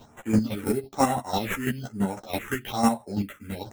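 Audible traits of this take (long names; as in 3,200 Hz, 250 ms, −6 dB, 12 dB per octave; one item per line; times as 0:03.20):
aliases and images of a low sample rate 4,700 Hz, jitter 0%
phaser sweep stages 4, 1.1 Hz, lowest notch 690–4,800 Hz
chopped level 6 Hz, depth 65%, duty 25%
a shimmering, thickened sound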